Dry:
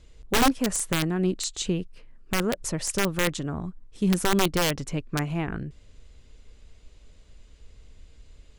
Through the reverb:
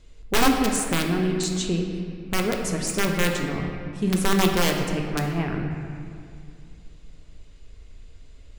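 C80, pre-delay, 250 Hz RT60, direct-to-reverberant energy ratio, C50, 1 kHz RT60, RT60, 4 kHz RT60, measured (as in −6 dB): 4.5 dB, 3 ms, 2.8 s, 1.0 dB, 3.5 dB, 2.2 s, 2.3 s, 1.6 s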